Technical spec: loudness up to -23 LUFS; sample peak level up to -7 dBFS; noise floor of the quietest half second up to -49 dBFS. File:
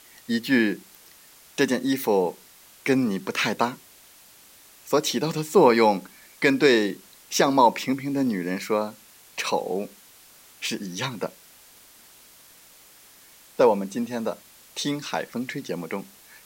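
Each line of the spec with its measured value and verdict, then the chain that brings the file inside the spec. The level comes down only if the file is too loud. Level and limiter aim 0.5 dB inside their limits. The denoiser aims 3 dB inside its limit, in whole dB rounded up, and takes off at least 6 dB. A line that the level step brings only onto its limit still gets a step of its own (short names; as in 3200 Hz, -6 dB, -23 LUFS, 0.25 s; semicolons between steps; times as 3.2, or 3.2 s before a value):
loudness -24.0 LUFS: OK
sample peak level -5.5 dBFS: fail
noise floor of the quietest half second -52 dBFS: OK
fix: limiter -7.5 dBFS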